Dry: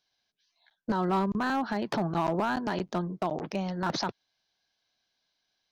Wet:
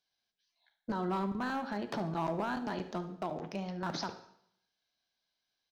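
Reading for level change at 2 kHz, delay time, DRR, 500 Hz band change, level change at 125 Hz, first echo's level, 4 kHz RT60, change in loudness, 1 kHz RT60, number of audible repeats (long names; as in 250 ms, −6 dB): −6.5 dB, 72 ms, 8.5 dB, −6.0 dB, −6.5 dB, −15.5 dB, 0.70 s, −6.5 dB, 0.70 s, 2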